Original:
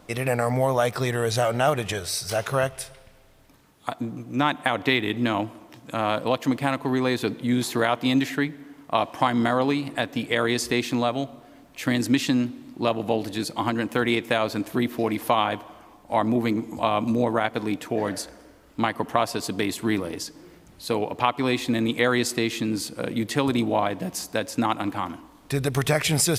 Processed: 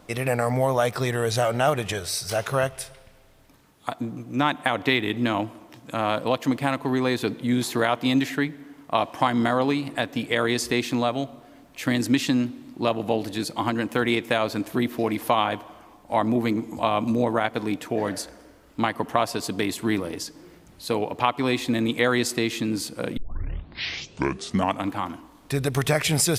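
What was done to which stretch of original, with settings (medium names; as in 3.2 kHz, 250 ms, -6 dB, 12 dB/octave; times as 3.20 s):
23.17 s: tape start 1.74 s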